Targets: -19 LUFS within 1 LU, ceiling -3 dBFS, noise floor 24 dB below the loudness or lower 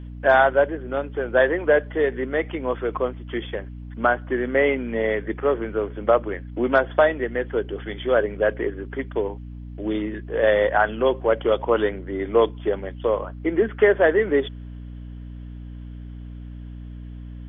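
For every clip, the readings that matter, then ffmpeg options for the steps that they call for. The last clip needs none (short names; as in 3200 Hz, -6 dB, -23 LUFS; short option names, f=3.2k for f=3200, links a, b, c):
hum 60 Hz; harmonics up to 300 Hz; hum level -34 dBFS; loudness -22.5 LUFS; peak -5.0 dBFS; loudness target -19.0 LUFS
-> -af "bandreject=f=60:t=h:w=6,bandreject=f=120:t=h:w=6,bandreject=f=180:t=h:w=6,bandreject=f=240:t=h:w=6,bandreject=f=300:t=h:w=6"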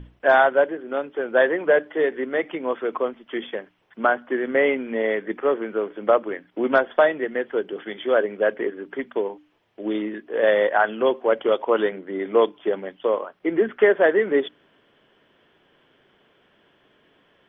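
hum none; loudness -22.5 LUFS; peak -5.0 dBFS; loudness target -19.0 LUFS
-> -af "volume=3.5dB,alimiter=limit=-3dB:level=0:latency=1"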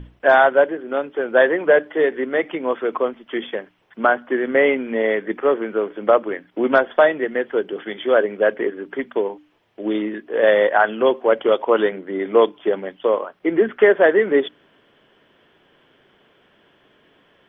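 loudness -19.0 LUFS; peak -3.0 dBFS; noise floor -58 dBFS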